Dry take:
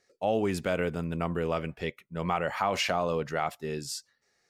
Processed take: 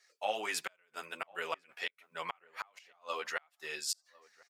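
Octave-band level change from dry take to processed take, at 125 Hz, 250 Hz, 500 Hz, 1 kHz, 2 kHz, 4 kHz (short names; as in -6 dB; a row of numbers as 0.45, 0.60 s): -32.5, -23.5, -13.5, -9.0, -4.0, -4.5 dB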